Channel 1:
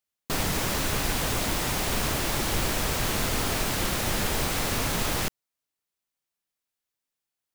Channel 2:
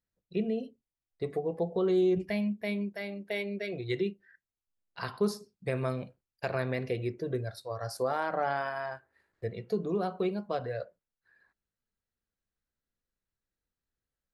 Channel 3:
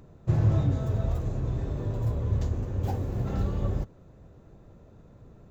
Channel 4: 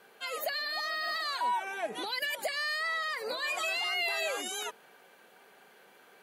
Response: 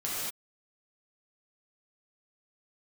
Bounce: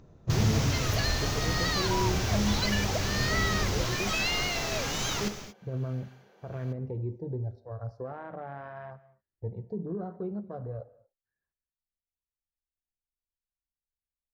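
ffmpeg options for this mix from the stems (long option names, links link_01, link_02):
-filter_complex "[0:a]volume=-8.5dB,asplit=2[link_01][link_02];[link_02]volume=-10.5dB[link_03];[1:a]alimiter=limit=-23.5dB:level=0:latency=1,afwtdn=0.01,aemphasis=mode=reproduction:type=riaa,volume=-8.5dB,asplit=2[link_04][link_05];[link_05]volume=-22dB[link_06];[2:a]acontrast=89,volume=-10.5dB[link_07];[3:a]acrossover=split=850[link_08][link_09];[link_08]aeval=exprs='val(0)*(1-0.7/2+0.7/2*cos(2*PI*1.2*n/s))':channel_layout=same[link_10];[link_09]aeval=exprs='val(0)*(1-0.7/2-0.7/2*cos(2*PI*1.2*n/s))':channel_layout=same[link_11];[link_10][link_11]amix=inputs=2:normalize=0,adelay=500,volume=1.5dB[link_12];[4:a]atrim=start_sample=2205[link_13];[link_03][link_06]amix=inputs=2:normalize=0[link_14];[link_14][link_13]afir=irnorm=-1:irlink=0[link_15];[link_01][link_04][link_07][link_12][link_15]amix=inputs=5:normalize=0,highshelf=frequency=7400:width_type=q:width=3:gain=-7"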